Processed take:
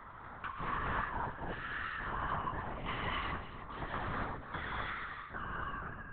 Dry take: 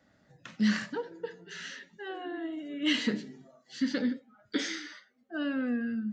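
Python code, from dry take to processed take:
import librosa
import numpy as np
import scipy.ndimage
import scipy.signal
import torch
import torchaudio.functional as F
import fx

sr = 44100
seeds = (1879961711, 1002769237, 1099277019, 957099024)

p1 = fx.fade_out_tail(x, sr, length_s=2.01)
p2 = 10.0 ** (-26.0 / 20.0) * np.tanh(p1 / 10.0 ** (-26.0 / 20.0))
p3 = fx.bandpass_q(p2, sr, hz=1100.0, q=8.0)
p4 = p3 + fx.echo_single(p3, sr, ms=292, db=-16.0, dry=0)
p5 = fx.rev_gated(p4, sr, seeds[0], gate_ms=290, shape='rising', drr_db=-6.5)
p6 = fx.lpc_vocoder(p5, sr, seeds[1], excitation='whisper', order=8)
p7 = fx.band_squash(p6, sr, depth_pct=70)
y = F.gain(torch.from_numpy(p7), 13.0).numpy()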